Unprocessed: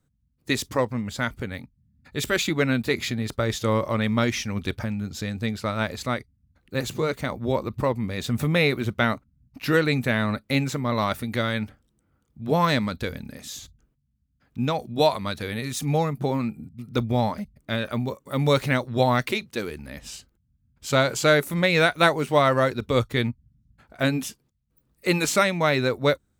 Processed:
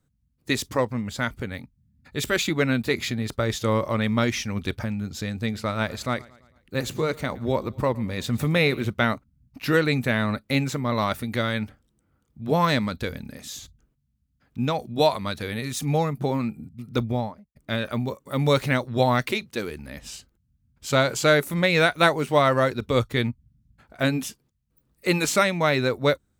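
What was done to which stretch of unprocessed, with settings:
5.33–8.89 feedback echo 0.112 s, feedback 53%, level -22.5 dB
16.95–17.55 studio fade out

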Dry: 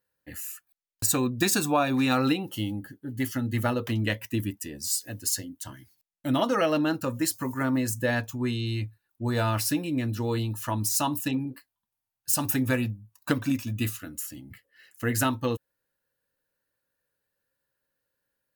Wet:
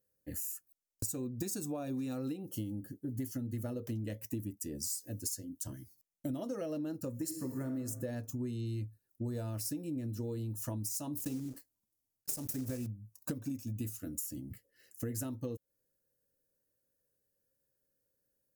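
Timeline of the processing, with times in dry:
7.19–7.71 reverb throw, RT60 1.2 s, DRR 5.5 dB
11.17–12.87 block floating point 3-bit
whole clip: band shelf 1800 Hz -14 dB 2.7 oct; compressor 10:1, threshold -36 dBFS; gain +1 dB

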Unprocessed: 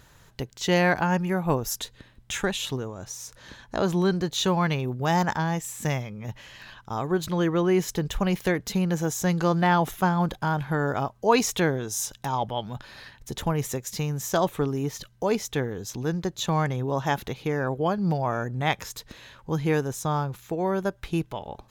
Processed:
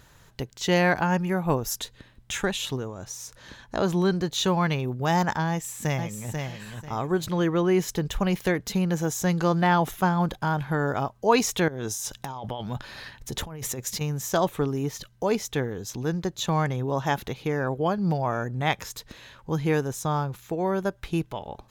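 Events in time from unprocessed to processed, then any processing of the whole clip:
5.49–6.39 echo throw 0.49 s, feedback 25%, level -5 dB
11.68–14.01 negative-ratio compressor -33 dBFS

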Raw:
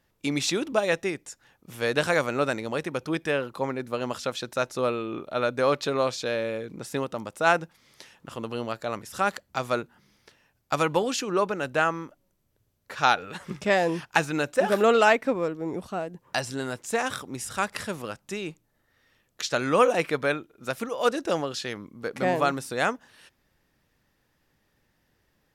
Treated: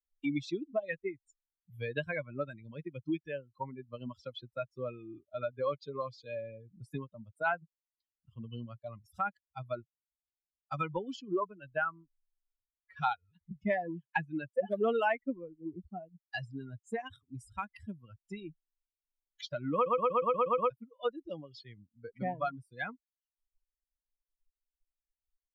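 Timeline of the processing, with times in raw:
19.74 stutter in place 0.12 s, 8 plays
whole clip: per-bin expansion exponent 3; LPF 2400 Hz 12 dB/oct; three-band squash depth 70%

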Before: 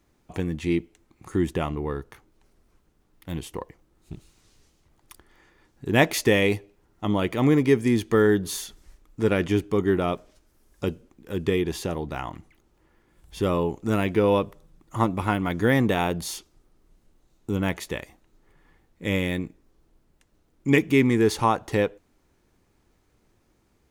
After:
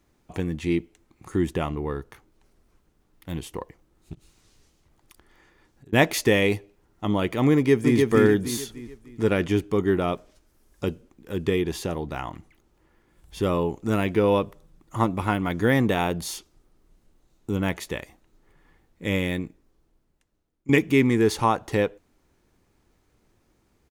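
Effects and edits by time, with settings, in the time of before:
4.14–5.93 compressor 10:1, threshold -47 dBFS
7.54–7.97 echo throw 0.3 s, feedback 40%, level -2.5 dB
19.32–20.69 fade out, to -18.5 dB

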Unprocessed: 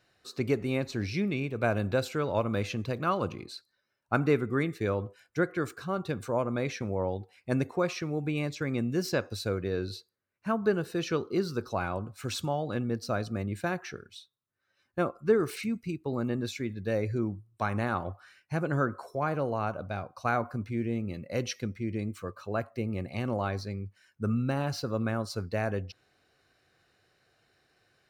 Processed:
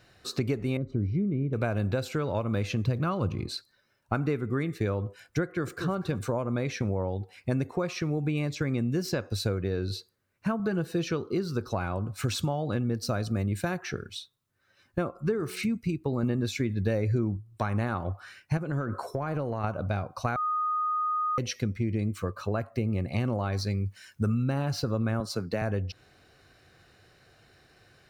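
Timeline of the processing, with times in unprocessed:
0.77–1.53 running mean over 51 samples
2.85–3.55 low shelf 160 Hz +10.5 dB
5.43–5.91 echo throw 0.24 s, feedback 20%, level -13.5 dB
10.59–11.11 comb 6.1 ms, depth 59%
12.94–13.78 high shelf 4900 Hz +6.5 dB
15.09–15.65 de-hum 183.2 Hz, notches 12
16.23–17.37 gain +5 dB
18.57–19.64 compressor, threshold -33 dBFS
20.36–21.38 bleep 1240 Hz -23.5 dBFS
23.52–24.44 high shelf 2300 Hz +8 dB
25.2–25.62 HPF 130 Hz 24 dB/oct
whole clip: compressor 4:1, threshold -38 dBFS; low shelf 160 Hz +8 dB; gain +8.5 dB

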